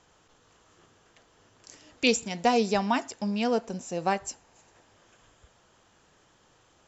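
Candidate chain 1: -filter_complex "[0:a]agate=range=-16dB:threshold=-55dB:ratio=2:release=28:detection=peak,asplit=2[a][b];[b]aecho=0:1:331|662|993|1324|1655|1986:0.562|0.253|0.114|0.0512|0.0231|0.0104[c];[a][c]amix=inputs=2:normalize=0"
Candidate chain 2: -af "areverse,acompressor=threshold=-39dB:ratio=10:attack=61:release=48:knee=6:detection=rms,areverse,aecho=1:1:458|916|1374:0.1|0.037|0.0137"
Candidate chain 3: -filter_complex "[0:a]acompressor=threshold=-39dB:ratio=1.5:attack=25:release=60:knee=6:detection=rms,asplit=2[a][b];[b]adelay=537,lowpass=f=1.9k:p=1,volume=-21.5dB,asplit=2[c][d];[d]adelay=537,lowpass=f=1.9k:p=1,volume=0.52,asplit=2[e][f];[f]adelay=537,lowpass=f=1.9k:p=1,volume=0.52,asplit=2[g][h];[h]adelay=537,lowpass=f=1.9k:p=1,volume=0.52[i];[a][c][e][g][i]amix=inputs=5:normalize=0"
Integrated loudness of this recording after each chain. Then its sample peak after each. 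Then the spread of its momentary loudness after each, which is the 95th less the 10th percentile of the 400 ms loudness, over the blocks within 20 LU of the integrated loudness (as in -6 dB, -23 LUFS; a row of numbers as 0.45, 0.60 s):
-27.0, -39.5, -33.0 LUFS; -7.5, -24.5, -14.5 dBFS; 15, 21, 18 LU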